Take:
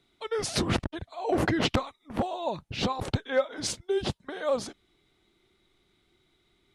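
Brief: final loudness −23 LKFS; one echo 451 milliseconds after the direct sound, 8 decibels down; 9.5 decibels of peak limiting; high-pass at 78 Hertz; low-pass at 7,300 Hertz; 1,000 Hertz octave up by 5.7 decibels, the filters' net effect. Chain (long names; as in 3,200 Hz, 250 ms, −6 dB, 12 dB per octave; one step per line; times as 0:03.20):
high-pass filter 78 Hz
low-pass filter 7,300 Hz
parametric band 1,000 Hz +7.5 dB
brickwall limiter −19.5 dBFS
single-tap delay 451 ms −8 dB
level +8 dB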